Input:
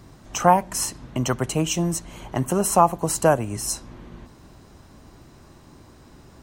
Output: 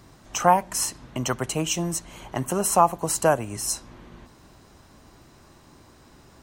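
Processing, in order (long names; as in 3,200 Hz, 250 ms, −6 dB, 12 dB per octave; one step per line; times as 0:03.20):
low-shelf EQ 480 Hz −5.5 dB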